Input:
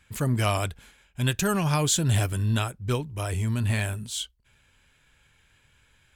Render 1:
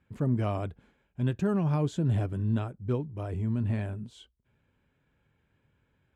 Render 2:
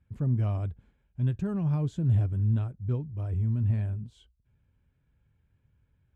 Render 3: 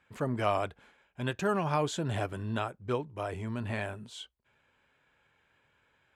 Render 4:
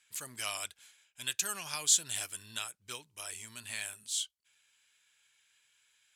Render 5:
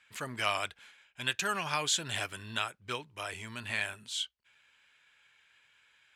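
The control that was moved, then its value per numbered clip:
band-pass, frequency: 250, 100, 660, 7300, 2300 Hz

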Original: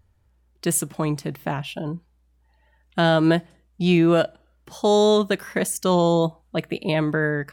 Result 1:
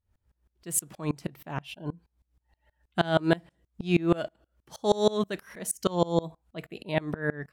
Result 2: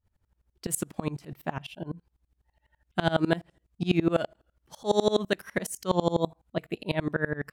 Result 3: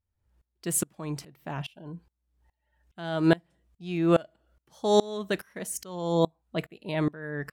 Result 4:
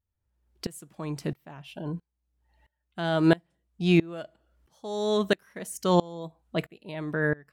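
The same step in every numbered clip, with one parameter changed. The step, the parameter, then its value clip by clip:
dB-ramp tremolo, rate: 6.3, 12, 2.4, 1.5 Hz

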